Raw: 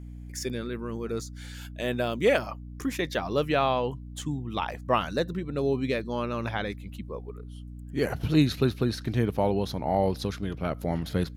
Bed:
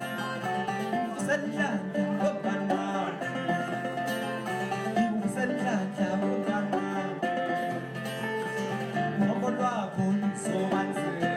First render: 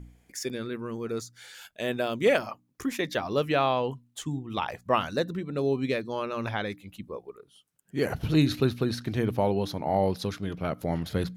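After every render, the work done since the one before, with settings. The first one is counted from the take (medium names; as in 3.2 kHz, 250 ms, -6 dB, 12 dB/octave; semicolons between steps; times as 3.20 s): de-hum 60 Hz, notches 5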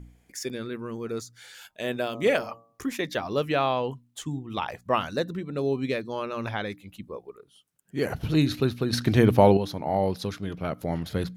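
1.21–2.90 s: de-hum 114.8 Hz, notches 11; 8.93–9.57 s: gain +8.5 dB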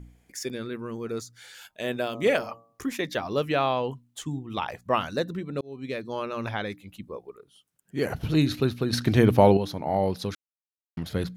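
5.61–6.13 s: fade in; 10.35–10.97 s: mute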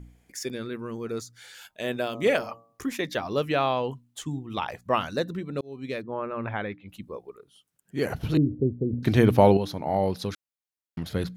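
6.01–6.88 s: low-pass 1.6 kHz -> 3.4 kHz 24 dB/octave; 8.37–9.03 s: steep low-pass 510 Hz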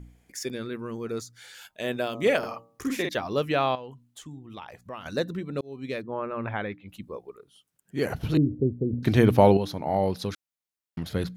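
2.38–3.09 s: doubling 50 ms -3 dB; 3.75–5.06 s: compression 2:1, threshold -46 dBFS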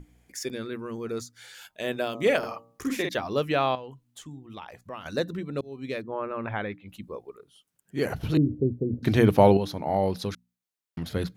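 hum notches 60/120/180/240 Hz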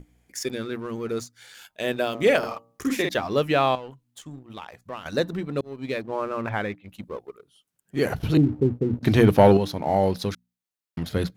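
waveshaping leveller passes 1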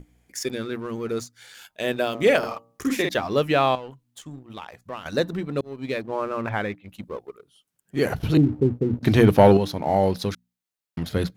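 trim +1 dB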